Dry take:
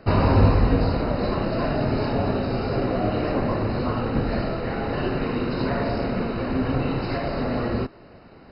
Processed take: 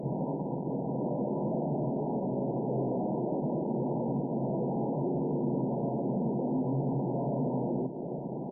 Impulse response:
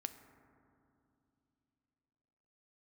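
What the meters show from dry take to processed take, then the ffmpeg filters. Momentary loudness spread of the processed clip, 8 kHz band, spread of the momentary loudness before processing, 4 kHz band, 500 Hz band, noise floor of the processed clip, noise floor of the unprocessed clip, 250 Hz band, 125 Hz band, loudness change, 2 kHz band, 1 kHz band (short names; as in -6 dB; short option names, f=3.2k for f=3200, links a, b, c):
3 LU, n/a, 7 LU, under -40 dB, -7.0 dB, -36 dBFS, -48 dBFS, -5.5 dB, -9.5 dB, -8.0 dB, under -40 dB, -9.5 dB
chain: -filter_complex "[0:a]alimiter=limit=-16.5dB:level=0:latency=1:release=227,aresample=8000,volume=32dB,asoftclip=hard,volume=-32dB,aresample=44100,acompressor=threshold=-42dB:ratio=8,asplit=2[a][b];[1:a]atrim=start_sample=2205,asetrate=57330,aresample=44100,lowshelf=f=88:g=-3[c];[b][c]afir=irnorm=-1:irlink=0,volume=-2dB[d];[a][d]amix=inputs=2:normalize=0,acrusher=samples=13:mix=1:aa=0.000001:lfo=1:lforange=20.8:lforate=0.57,afftfilt=real='re*between(b*sr/4096,120,1000)':imag='im*between(b*sr/4096,120,1000)':win_size=4096:overlap=0.75,afftdn=nr=34:nf=-59,lowshelf=f=350:g=8.5,bandreject=f=60:t=h:w=6,bandreject=f=120:t=h:w=6,bandreject=f=180:t=h:w=6,bandreject=f=240:t=h:w=6,bandreject=f=300:t=h:w=6,aecho=1:1:114|228|342|456|570:0.188|0.0923|0.0452|0.0222|0.0109,volume=5.5dB" -ar 48000 -c:a libopus -b:a 48k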